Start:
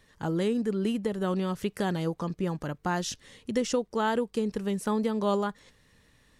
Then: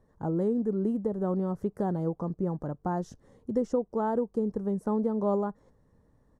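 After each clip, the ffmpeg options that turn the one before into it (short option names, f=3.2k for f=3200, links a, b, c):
-af "firequalizer=gain_entry='entry(750,0);entry(2600,-30);entry(5800,-19)':delay=0.05:min_phase=1"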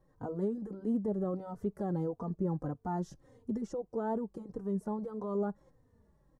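-filter_complex "[0:a]alimiter=limit=-24dB:level=0:latency=1:release=13,asplit=2[a][b];[b]adelay=3.2,afreqshift=-1.6[c];[a][c]amix=inputs=2:normalize=1"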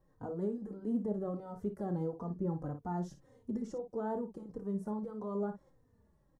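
-af "aecho=1:1:29|56:0.266|0.299,volume=-3dB"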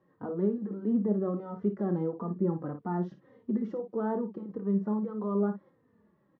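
-af "highpass=170,equalizer=f=200:t=q:w=4:g=7,equalizer=f=360:t=q:w=4:g=5,equalizer=f=750:t=q:w=4:g=-3,equalizer=f=1.2k:t=q:w=4:g=5,equalizer=f=1.9k:t=q:w=4:g=4,lowpass=f=3.4k:w=0.5412,lowpass=f=3.4k:w=1.3066,volume=4dB"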